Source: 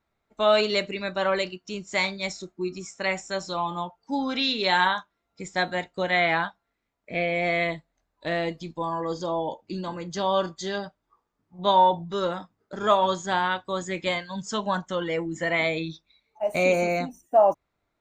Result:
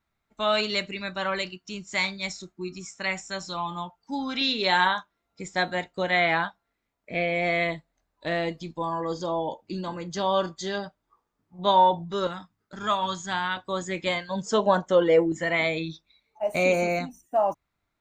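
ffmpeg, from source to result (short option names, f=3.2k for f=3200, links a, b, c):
-af "asetnsamples=n=441:p=0,asendcmd='4.41 equalizer g -0.5;12.27 equalizer g -12;13.57 equalizer g -0.5;14.29 equalizer g 10.5;15.32 equalizer g -1;16.99 equalizer g -7.5',equalizer=f=490:t=o:w=1.4:g=-7.5"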